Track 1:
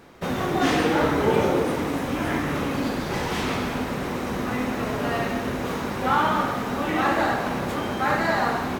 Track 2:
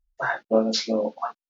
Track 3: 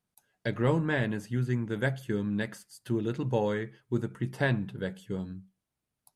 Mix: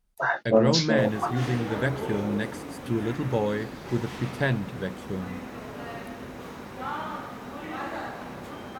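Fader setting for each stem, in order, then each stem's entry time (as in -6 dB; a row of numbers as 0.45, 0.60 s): -12.0, +0.5, +2.0 dB; 0.75, 0.00, 0.00 s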